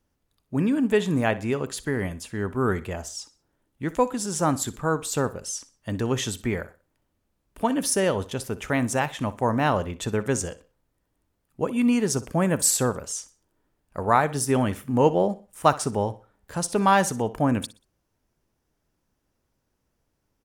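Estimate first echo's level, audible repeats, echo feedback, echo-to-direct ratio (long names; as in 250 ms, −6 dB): −18.0 dB, 2, 32%, −17.5 dB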